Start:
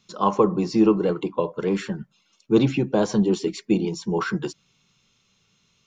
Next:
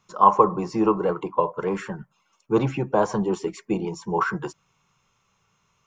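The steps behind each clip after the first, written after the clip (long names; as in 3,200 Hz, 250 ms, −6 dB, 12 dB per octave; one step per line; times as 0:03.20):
graphic EQ with 10 bands 250 Hz −8 dB, 1,000 Hz +9 dB, 4,000 Hz −12 dB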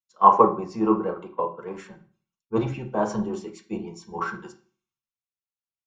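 on a send at −3 dB: convolution reverb RT60 0.60 s, pre-delay 4 ms
on the sum: multiband upward and downward expander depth 100%
level −7 dB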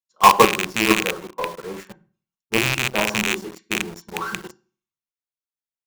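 loose part that buzzes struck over −34 dBFS, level −10 dBFS
in parallel at −4 dB: log-companded quantiser 2 bits
on the sum: level −4.5 dB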